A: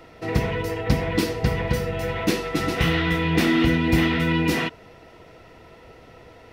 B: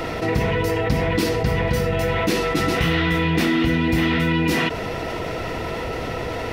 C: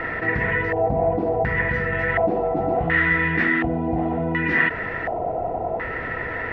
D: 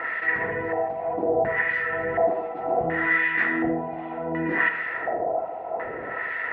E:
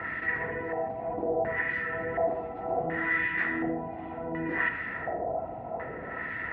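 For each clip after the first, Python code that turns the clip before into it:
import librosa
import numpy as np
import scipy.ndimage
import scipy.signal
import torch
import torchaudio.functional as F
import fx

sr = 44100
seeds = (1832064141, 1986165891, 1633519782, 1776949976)

y1 = fx.env_flatten(x, sr, amount_pct=70)
y1 = y1 * librosa.db_to_amplitude(-2.5)
y2 = fx.filter_lfo_lowpass(y1, sr, shape='square', hz=0.69, low_hz=730.0, high_hz=1800.0, q=7.3)
y2 = y2 * librosa.db_to_amplitude(-5.5)
y3 = fx.filter_lfo_bandpass(y2, sr, shape='sine', hz=1.3, low_hz=440.0, high_hz=2400.0, q=0.88)
y3 = fx.rev_freeverb(y3, sr, rt60_s=0.69, hf_ratio=0.55, predelay_ms=20, drr_db=8.5)
y4 = fx.dmg_noise_band(y3, sr, seeds[0], low_hz=50.0, high_hz=340.0, level_db=-41.0)
y4 = y4 * librosa.db_to_amplitude(-6.0)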